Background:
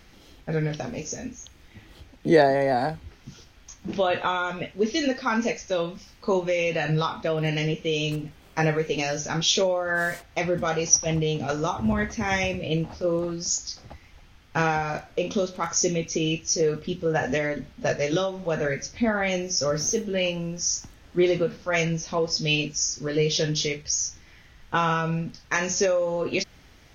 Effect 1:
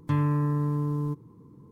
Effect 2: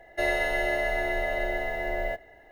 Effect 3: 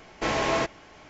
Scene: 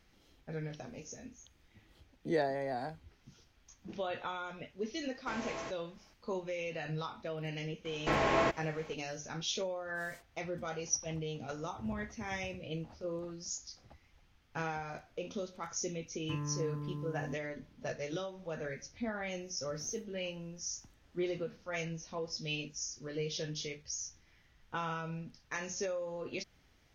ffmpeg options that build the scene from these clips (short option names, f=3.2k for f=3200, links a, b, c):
-filter_complex "[3:a]asplit=2[a][b];[0:a]volume=-14.5dB[c];[b]acrossover=split=2900[d][e];[e]acompressor=threshold=-43dB:ratio=4:attack=1:release=60[f];[d][f]amix=inputs=2:normalize=0[g];[a]atrim=end=1.09,asetpts=PTS-STARTPTS,volume=-17dB,afade=t=in:d=0.004:c=hsin,afade=t=out:st=1.086:d=0.004:c=hsin,adelay=222705S[h];[g]atrim=end=1.09,asetpts=PTS-STARTPTS,volume=-3.5dB,afade=t=in:d=0.004:c=hsin,afade=t=out:st=1.086:d=0.004:c=hsin,adelay=7850[i];[1:a]atrim=end=1.71,asetpts=PTS-STARTPTS,volume=-14dB,afade=t=in:d=0.004:c=hsin,afade=t=out:st=1.706:d=0.004:c=hsin,adelay=714420S[j];[c][h][i][j]amix=inputs=4:normalize=0"